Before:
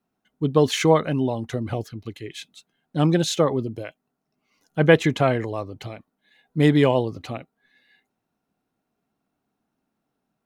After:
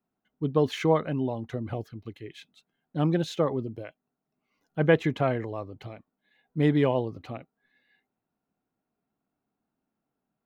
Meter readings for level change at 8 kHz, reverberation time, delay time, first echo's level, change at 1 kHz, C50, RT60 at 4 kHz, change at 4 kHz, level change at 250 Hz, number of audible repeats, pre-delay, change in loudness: below −15 dB, no reverb audible, no echo audible, no echo audible, −6.0 dB, no reverb audible, no reverb audible, −10.5 dB, −5.5 dB, no echo audible, no reverb audible, −6.0 dB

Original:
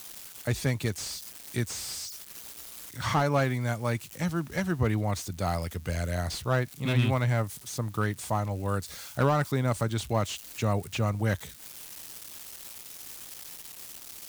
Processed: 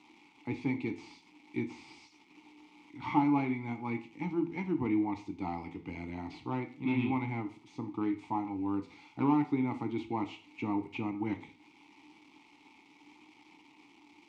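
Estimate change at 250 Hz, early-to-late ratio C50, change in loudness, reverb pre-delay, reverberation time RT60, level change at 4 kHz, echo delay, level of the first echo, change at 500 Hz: +1.5 dB, 13.0 dB, −4.5 dB, 12 ms, 0.40 s, −16.0 dB, no echo audible, no echo audible, −10.0 dB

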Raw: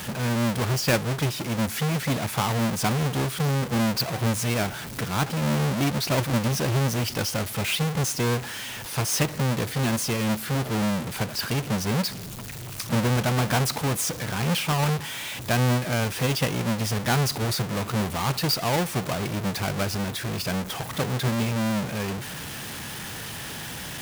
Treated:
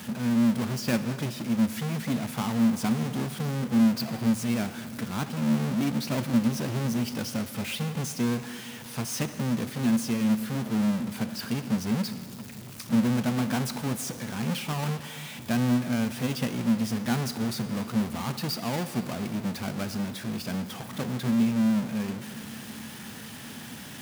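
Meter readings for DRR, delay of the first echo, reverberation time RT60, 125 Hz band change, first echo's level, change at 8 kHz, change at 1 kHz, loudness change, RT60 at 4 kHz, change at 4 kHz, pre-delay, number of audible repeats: 11.0 dB, no echo audible, 2.9 s, −6.0 dB, no echo audible, −7.5 dB, −7.5 dB, −2.5 dB, 2.6 s, −7.5 dB, 6 ms, no echo audible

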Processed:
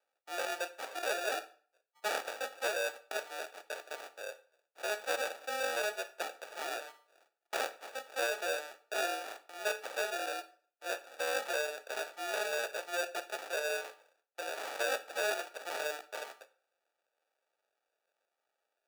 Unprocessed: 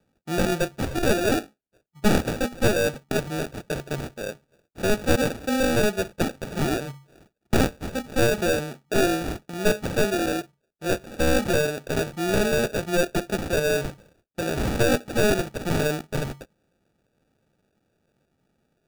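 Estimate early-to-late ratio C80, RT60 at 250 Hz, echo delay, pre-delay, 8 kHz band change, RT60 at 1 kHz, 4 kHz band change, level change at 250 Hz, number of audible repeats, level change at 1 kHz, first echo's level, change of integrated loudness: 20.5 dB, 0.40 s, no echo audible, 11 ms, −9.5 dB, 0.45 s, −8.5 dB, −29.5 dB, no echo audible, −7.5 dB, no echo audible, −12.0 dB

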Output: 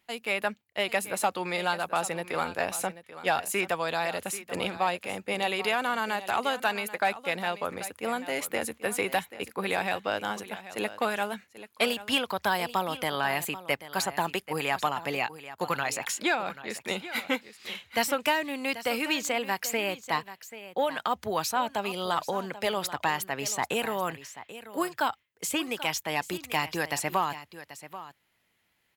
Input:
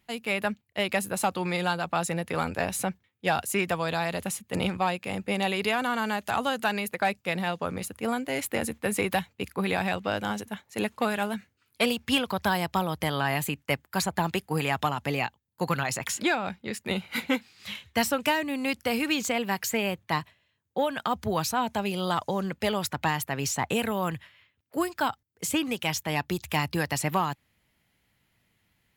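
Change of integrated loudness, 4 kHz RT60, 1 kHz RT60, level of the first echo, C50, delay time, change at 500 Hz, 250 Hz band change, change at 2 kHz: −1.0 dB, no reverb audible, no reverb audible, −14.5 dB, no reverb audible, 786 ms, −1.0 dB, −6.0 dB, 0.0 dB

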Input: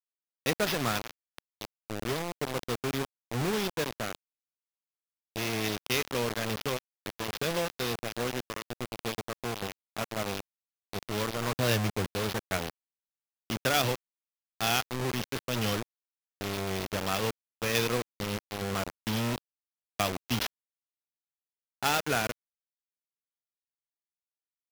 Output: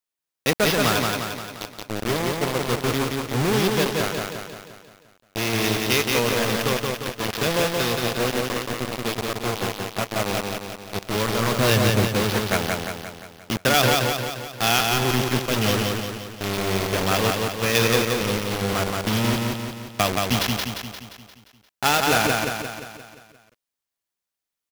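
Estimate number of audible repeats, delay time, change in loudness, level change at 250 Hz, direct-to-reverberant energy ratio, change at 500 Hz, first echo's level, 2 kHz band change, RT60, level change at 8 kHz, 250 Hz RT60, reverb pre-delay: 6, 175 ms, +9.0 dB, +10.0 dB, no reverb audible, +10.0 dB, −3.0 dB, +10.0 dB, no reverb audible, +10.0 dB, no reverb audible, no reverb audible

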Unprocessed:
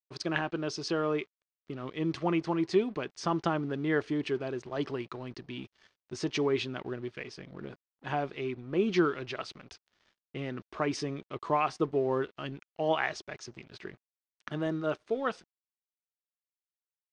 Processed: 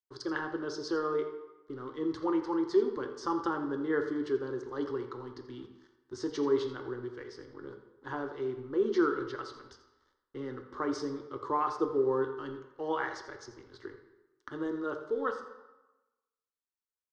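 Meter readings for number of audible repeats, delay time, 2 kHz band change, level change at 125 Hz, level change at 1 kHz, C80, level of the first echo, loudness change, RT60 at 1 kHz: 1, 84 ms, −4.0 dB, −10.0 dB, −1.5 dB, 9.5 dB, −14.5 dB, −1.0 dB, 1.1 s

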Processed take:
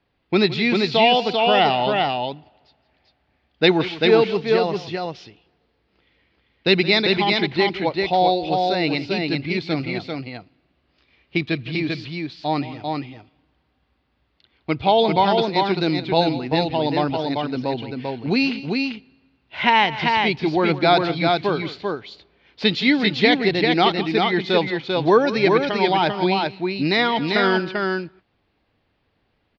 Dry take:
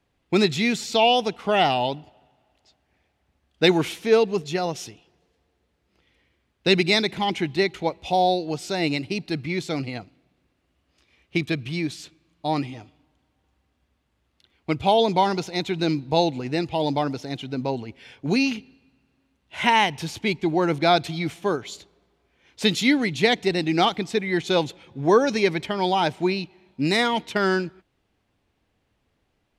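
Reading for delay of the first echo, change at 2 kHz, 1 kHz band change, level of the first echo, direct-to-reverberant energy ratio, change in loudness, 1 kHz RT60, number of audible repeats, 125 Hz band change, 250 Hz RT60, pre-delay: 167 ms, +4.5 dB, +4.0 dB, −16.0 dB, no reverb audible, +3.0 dB, no reverb audible, 2, +2.5 dB, no reverb audible, no reverb audible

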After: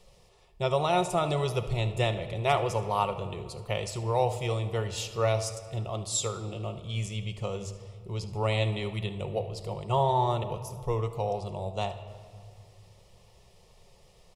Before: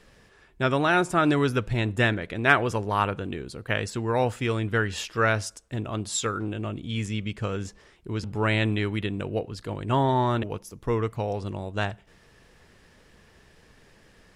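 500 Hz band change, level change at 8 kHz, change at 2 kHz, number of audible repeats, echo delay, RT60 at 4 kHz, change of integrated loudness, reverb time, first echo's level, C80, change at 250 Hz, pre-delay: −1.5 dB, 0.0 dB, −12.5 dB, 1, 74 ms, 1.4 s, −3.5 dB, 1.9 s, −17.0 dB, 12.5 dB, −10.0 dB, 6 ms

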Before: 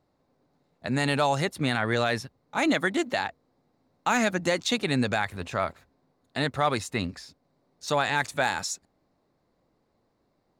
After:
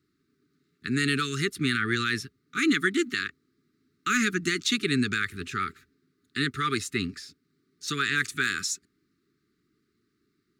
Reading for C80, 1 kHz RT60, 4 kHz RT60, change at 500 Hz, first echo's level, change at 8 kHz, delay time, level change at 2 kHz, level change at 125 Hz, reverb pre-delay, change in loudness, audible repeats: no reverb audible, no reverb audible, no reverb audible, −6.5 dB, no echo audible, +2.0 dB, no echo audible, +2.0 dB, −2.0 dB, no reverb audible, −0.5 dB, no echo audible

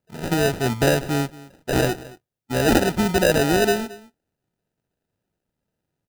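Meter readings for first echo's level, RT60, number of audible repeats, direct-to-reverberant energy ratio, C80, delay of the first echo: −19.5 dB, no reverb audible, 1, no reverb audible, no reverb audible, 223 ms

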